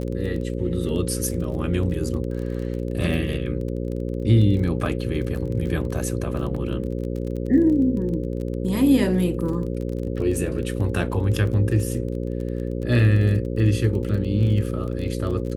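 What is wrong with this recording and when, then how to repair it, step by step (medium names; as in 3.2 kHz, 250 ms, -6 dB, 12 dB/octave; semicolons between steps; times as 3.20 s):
buzz 60 Hz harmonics 9 -27 dBFS
crackle 24 per s -30 dBFS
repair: de-click; de-hum 60 Hz, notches 9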